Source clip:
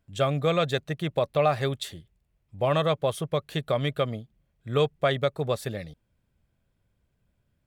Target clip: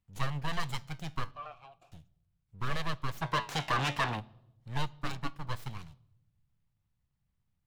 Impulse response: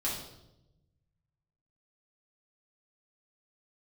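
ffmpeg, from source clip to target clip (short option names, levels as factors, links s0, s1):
-filter_complex "[0:a]flanger=delay=5.1:depth=5.3:regen=79:speed=0.39:shape=sinusoidal,asettb=1/sr,asplit=3[s0][s1][s2];[s0]atrim=end=4.984[s3];[s1]atrim=start=4.98:end=5.49,asetpts=PTS-STARTPTS,afade=t=in:d=0.004:c=qsin,afade=t=out:st=0.506:d=0.004:c=qsin,tremolo=f=300:d=0.75[s4];[s2]atrim=start=5.486[s5];[s3][s4]acrossfade=d=0.004:c1=hsin:c2=qsin[s6];[s6][s5]acrossfade=d=0.004:c1=qsin:c2=hsin,acrossover=split=250[s7][s8];[s8]aeval=exprs='abs(val(0))':c=same[s9];[s7][s9]amix=inputs=2:normalize=0,asettb=1/sr,asplit=3[s10][s11][s12];[s10]atrim=end=1.314[s13];[s11]atrim=start=1.31:end=1.92,asetpts=PTS-STARTPTS,afade=t=in:d=0.004:c=qsin,afade=t=out:st=0.606:d=0.004:c=qsin,asplit=3[s14][s15][s16];[s14]bandpass=f=730:t=q:w=8,volume=1[s17];[s15]bandpass=f=1090:t=q:w=8,volume=0.501[s18];[s16]bandpass=f=2440:t=q:w=8,volume=0.355[s19];[s17][s18][s19]amix=inputs=3:normalize=0[s20];[s12]atrim=start=1.916[s21];[s13][s20]acrossfade=d=0.004:c1=hsin:c2=qsin[s22];[s22][s21]acrossfade=d=0.004:c1=qsin:c2=hsin,asplit=3[s23][s24][s25];[s23]afade=t=out:st=3.21:d=0.02[s26];[s24]asplit=2[s27][s28];[s28]highpass=f=720:p=1,volume=20,asoftclip=type=tanh:threshold=0.141[s29];[s27][s29]amix=inputs=2:normalize=0,lowpass=f=2700:p=1,volume=0.501,afade=t=in:st=3.21:d=0.02,afade=t=out:st=4.19:d=0.02[s30];[s25]afade=t=in:st=4.19:d=0.02[s31];[s26][s30][s31]amix=inputs=3:normalize=0,asplit=2[s32][s33];[1:a]atrim=start_sample=2205,lowpass=5300[s34];[s33][s34]afir=irnorm=-1:irlink=0,volume=0.0631[s35];[s32][s35]amix=inputs=2:normalize=0,volume=0.708"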